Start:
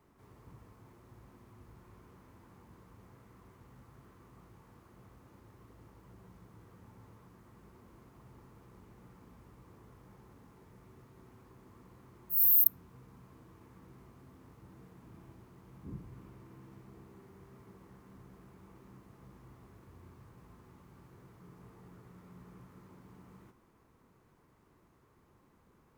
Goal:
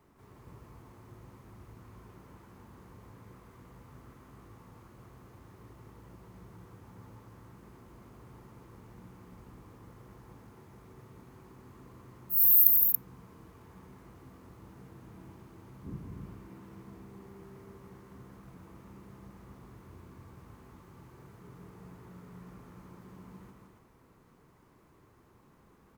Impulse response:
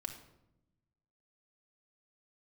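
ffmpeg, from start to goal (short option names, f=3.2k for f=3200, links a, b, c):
-af "aecho=1:1:163.3|279.9:0.562|0.562,volume=2.5dB"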